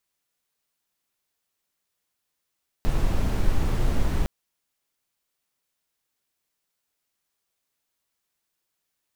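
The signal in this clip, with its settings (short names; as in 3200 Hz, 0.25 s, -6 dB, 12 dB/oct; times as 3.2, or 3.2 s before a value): noise brown, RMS -20.5 dBFS 1.41 s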